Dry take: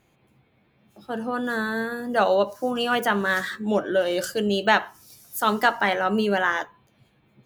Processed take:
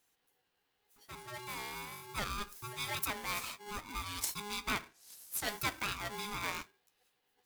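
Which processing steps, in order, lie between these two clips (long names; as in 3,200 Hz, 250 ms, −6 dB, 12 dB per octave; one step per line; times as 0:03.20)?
0:04.65–0:05.45: treble cut that deepens with the level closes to 2,700 Hz, closed at −19.5 dBFS
first-order pre-emphasis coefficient 0.9
ring modulator with a square carrier 620 Hz
level −2 dB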